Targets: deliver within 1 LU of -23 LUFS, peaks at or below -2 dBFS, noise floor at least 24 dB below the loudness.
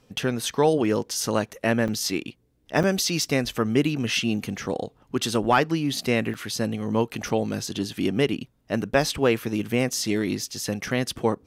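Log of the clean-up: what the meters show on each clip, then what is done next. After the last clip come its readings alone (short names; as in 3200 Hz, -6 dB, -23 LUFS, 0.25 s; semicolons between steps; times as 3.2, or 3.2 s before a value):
dropouts 3; longest dropout 6.5 ms; loudness -25.0 LUFS; peak -8.5 dBFS; loudness target -23.0 LUFS
-> interpolate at 1.88/2.83/6.34, 6.5 ms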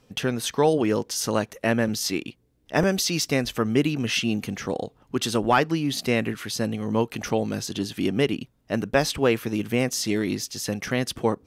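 dropouts 0; loudness -25.0 LUFS; peak -8.5 dBFS; loudness target -23.0 LUFS
-> gain +2 dB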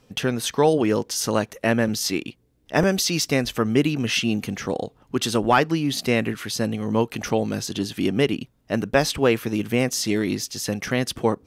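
loudness -23.0 LUFS; peak -6.5 dBFS; noise floor -61 dBFS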